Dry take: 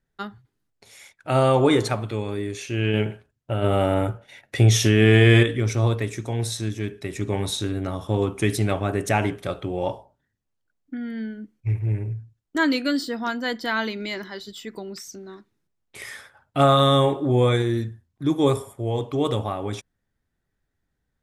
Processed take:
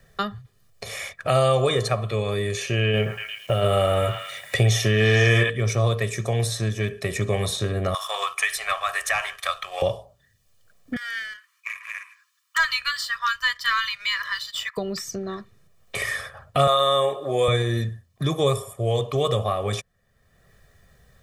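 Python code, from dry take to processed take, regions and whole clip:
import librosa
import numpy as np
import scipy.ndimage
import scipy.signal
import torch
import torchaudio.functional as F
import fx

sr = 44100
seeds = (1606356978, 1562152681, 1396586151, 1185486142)

y = fx.chain(x, sr, fx.echo_stepped(ms=112, hz=1200.0, octaves=0.7, feedback_pct=70, wet_db=-2.0),
    fx.quant_dither(seeds[0], bits=10, dither='none'), at=(2.95, 5.5))
y = fx.chain(y, sr, fx.highpass(hz=1000.0, slope=24),
    fx.leveller(passes=1),
    fx.band_squash(depth_pct=40), at=(7.94, 9.82))
y = fx.chain(y, sr, fx.brickwall_highpass(low_hz=960.0),
    fx.leveller(passes=1), at=(10.96, 14.77))
y = fx.chain(y, sr, fx.highpass(hz=390.0, slope=12),
    fx.high_shelf(hz=8900.0, db=5.5), at=(16.67, 17.48))
y = fx.low_shelf(y, sr, hz=79.0, db=-7.0)
y = y + 0.8 * np.pad(y, (int(1.7 * sr / 1000.0), 0))[:len(y)]
y = fx.band_squash(y, sr, depth_pct=70)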